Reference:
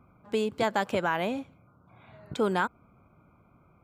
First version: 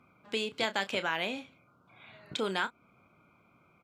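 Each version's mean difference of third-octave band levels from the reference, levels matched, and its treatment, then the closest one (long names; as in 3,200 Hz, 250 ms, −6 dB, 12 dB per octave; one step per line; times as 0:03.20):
3.5 dB: meter weighting curve D
in parallel at −1 dB: downward compressor, threshold −33 dBFS, peak gain reduction 13.5 dB
on the sum: double-tracking delay 31 ms −12 dB
level −8.5 dB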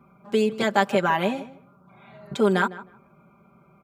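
2.5 dB: high-pass filter 91 Hz
comb filter 5.1 ms, depth 95%
on a send: tape delay 154 ms, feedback 20%, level −15 dB, low-pass 1,900 Hz
on the sum: level +2.5 dB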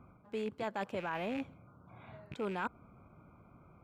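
5.5 dB: loose part that buzzes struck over −41 dBFS, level −26 dBFS
high-shelf EQ 3,300 Hz −8 dB
reversed playback
downward compressor 5 to 1, threshold −37 dBFS, peak gain reduction 13.5 dB
reversed playback
level +1.5 dB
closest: second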